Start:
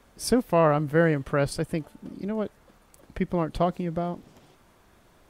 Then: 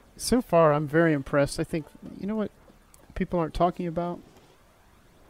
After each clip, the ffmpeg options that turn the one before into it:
ffmpeg -i in.wav -af "aphaser=in_gain=1:out_gain=1:delay=3.7:decay=0.32:speed=0.38:type=triangular" out.wav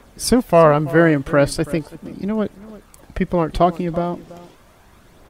ffmpeg -i in.wav -filter_complex "[0:a]asplit=2[link_01][link_02];[link_02]adelay=332.4,volume=-18dB,highshelf=frequency=4000:gain=-7.48[link_03];[link_01][link_03]amix=inputs=2:normalize=0,volume=8dB" out.wav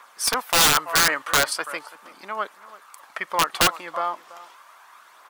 ffmpeg -i in.wav -af "highpass=frequency=1100:width_type=q:width=2.7,aeval=exprs='(mod(3.35*val(0)+1,2)-1)/3.35':channel_layout=same" out.wav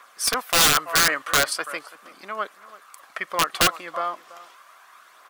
ffmpeg -i in.wav -af "bandreject=frequency=900:width=5.8" out.wav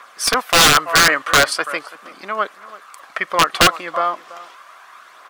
ffmpeg -i in.wav -af "highshelf=frequency=8300:gain=-10.5,volume=8dB" out.wav

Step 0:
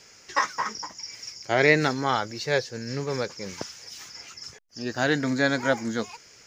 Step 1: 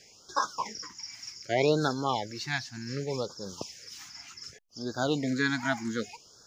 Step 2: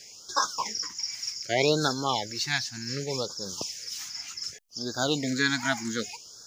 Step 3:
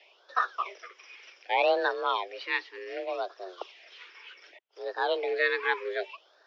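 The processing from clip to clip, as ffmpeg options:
ffmpeg -i in.wav -af "afftfilt=real='re*(1-between(b*sr/1024,440*pow(2400/440,0.5+0.5*sin(2*PI*0.66*pts/sr))/1.41,440*pow(2400/440,0.5+0.5*sin(2*PI*0.66*pts/sr))*1.41))':imag='im*(1-between(b*sr/1024,440*pow(2400/440,0.5+0.5*sin(2*PI*0.66*pts/sr))/1.41,440*pow(2400/440,0.5+0.5*sin(2*PI*0.66*pts/sr))*1.41))':win_size=1024:overlap=0.75,volume=-3.5dB" out.wav
ffmpeg -i in.wav -af "highshelf=frequency=2900:gain=11.5" out.wav
ffmpeg -i in.wav -af "acrusher=bits=4:mode=log:mix=0:aa=0.000001,highpass=frequency=190:width_type=q:width=0.5412,highpass=frequency=190:width_type=q:width=1.307,lowpass=frequency=3200:width_type=q:width=0.5176,lowpass=frequency=3200:width_type=q:width=0.7071,lowpass=frequency=3200:width_type=q:width=1.932,afreqshift=180" out.wav

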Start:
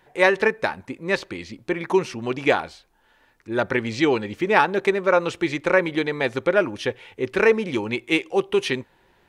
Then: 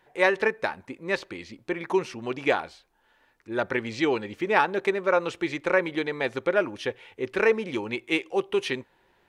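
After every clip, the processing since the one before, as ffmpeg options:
ffmpeg -i in.wav -af "bass=frequency=250:gain=-4,treble=frequency=4000:gain=-2,volume=-4dB" out.wav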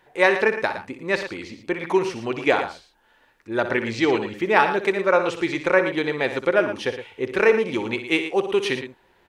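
ffmpeg -i in.wav -af "aecho=1:1:61.22|113.7:0.282|0.282,volume=4dB" out.wav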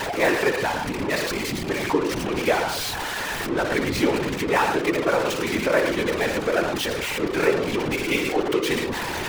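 ffmpeg -i in.wav -af "aeval=exprs='val(0)+0.5*0.168*sgn(val(0))':channel_layout=same,anlmdn=1580,afftfilt=real='hypot(re,im)*cos(2*PI*random(0))':imag='hypot(re,im)*sin(2*PI*random(1))':win_size=512:overlap=0.75" out.wav

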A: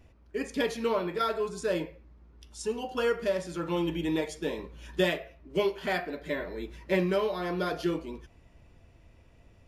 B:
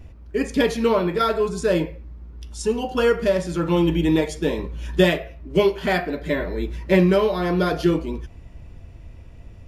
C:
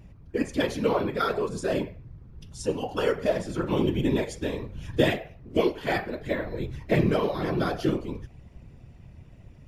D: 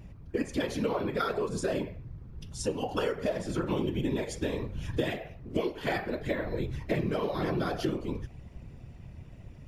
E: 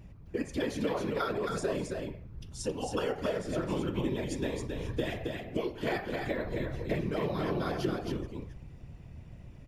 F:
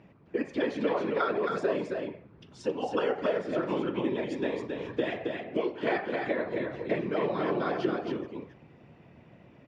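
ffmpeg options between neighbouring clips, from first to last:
ffmpeg -i in.wav -af "lowshelf=frequency=200:gain=10,volume=7.5dB" out.wav
ffmpeg -i in.wav -af "afftfilt=real='hypot(re,im)*cos(2*PI*random(0))':imag='hypot(re,im)*sin(2*PI*random(1))':win_size=512:overlap=0.75" out.wav
ffmpeg -i in.wav -af "acompressor=threshold=-28dB:ratio=6,volume=1.5dB" out.wav
ffmpeg -i in.wav -af "aecho=1:1:270:0.631,volume=-3dB" out.wav
ffmpeg -i in.wav -af "highpass=250,lowpass=2800,volume=4.5dB" out.wav

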